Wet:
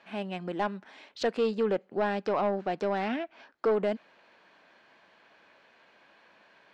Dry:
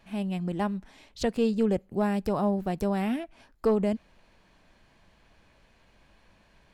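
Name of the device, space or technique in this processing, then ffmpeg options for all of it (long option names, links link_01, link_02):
intercom: -filter_complex "[0:a]asettb=1/sr,asplit=3[link_01][link_02][link_03];[link_01]atrim=end=1.584[link_04];[link_02]atrim=start=1.58:end=3.66,asetpts=PTS-STARTPTS,afade=type=in:duration=0.004:curve=qsin,afade=type=out:start_time=2.076:duration=0.004:curve=qsin,lowpass=frequency=7100:width=0.5412,lowpass=frequency=7100:width=1.3066[link_05];[link_03]atrim=start=3.656[link_06];[link_04][link_05]acrossfade=duration=0.004:curve1=hsin:curve2=qsin[link_07];[link_07][link_06]acrossfade=duration=0.004:curve1=qsin:curve2=hsin,highpass=370,lowpass=4100,equalizer=frequency=1500:width_type=o:width=0.42:gain=4,asoftclip=type=tanh:threshold=-23.5dB,volume=4dB"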